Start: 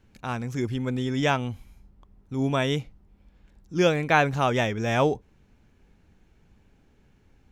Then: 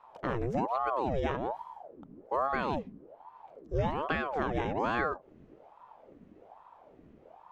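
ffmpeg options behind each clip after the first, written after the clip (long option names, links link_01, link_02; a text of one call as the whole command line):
ffmpeg -i in.wav -af "acompressor=threshold=-30dB:ratio=6,lowpass=frequency=1000:poles=1,aeval=exprs='val(0)*sin(2*PI*590*n/s+590*0.65/1.2*sin(2*PI*1.2*n/s))':channel_layout=same,volume=6dB" out.wav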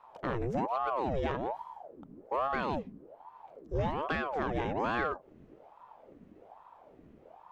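ffmpeg -i in.wav -af "asoftclip=type=tanh:threshold=-21dB" out.wav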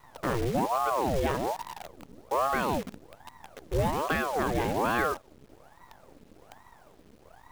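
ffmpeg -i in.wav -af "acrusher=bits=8:dc=4:mix=0:aa=0.000001,volume=4.5dB" out.wav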